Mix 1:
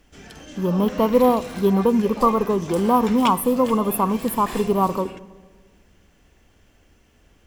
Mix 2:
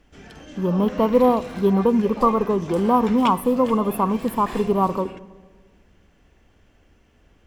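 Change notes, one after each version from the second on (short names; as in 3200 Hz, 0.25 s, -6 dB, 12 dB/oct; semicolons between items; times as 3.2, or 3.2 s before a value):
master: add high shelf 5000 Hz -10.5 dB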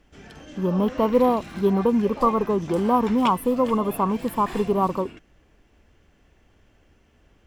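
reverb: off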